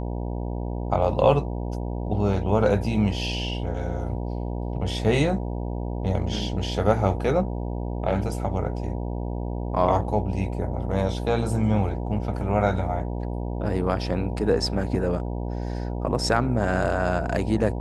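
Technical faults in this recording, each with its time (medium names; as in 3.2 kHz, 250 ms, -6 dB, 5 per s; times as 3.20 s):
buzz 60 Hz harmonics 16 -29 dBFS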